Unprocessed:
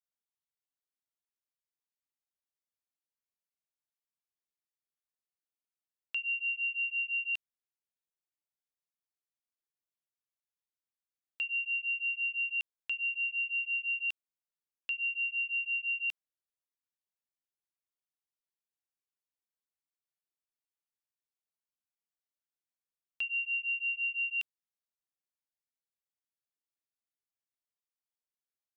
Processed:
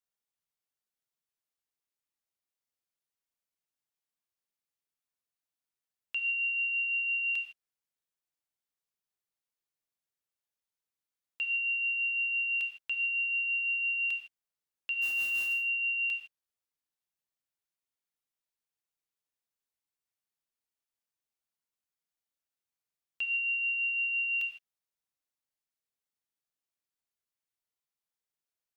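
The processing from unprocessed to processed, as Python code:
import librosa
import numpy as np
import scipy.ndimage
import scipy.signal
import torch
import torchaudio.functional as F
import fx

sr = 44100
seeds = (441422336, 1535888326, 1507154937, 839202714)

y = fx.mod_noise(x, sr, seeds[0], snr_db=16, at=(15.01, 15.52), fade=0.02)
y = fx.rev_gated(y, sr, seeds[1], gate_ms=180, shape='flat', drr_db=5.0)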